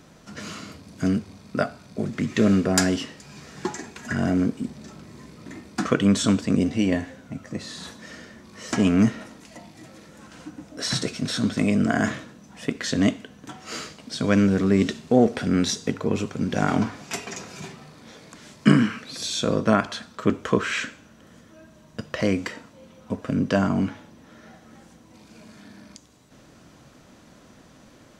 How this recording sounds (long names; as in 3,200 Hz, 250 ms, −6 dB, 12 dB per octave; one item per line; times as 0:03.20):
background noise floor −52 dBFS
spectral slope −5.5 dB per octave